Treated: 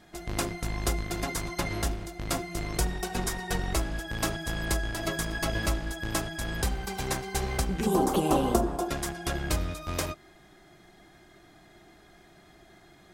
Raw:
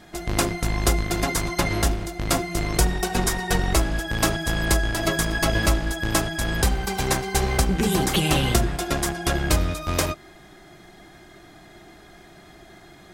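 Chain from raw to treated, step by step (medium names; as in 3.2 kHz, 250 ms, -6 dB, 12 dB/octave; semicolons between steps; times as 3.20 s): 7.86–8.89 s: graphic EQ 125/250/500/1000/2000/4000 Hz -7/+8/+7/+10/-11/-5 dB; trim -8 dB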